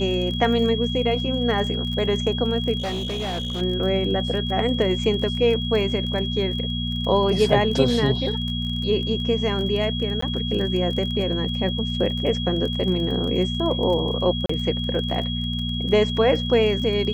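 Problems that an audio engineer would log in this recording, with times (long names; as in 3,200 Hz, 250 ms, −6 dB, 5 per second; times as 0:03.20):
surface crackle 26 per second −29 dBFS
mains hum 60 Hz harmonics 4 −27 dBFS
whistle 3,300 Hz −29 dBFS
0:02.78–0:03.62: clipping −23.5 dBFS
0:10.21–0:10.22: drop-out 14 ms
0:14.46–0:14.49: drop-out 34 ms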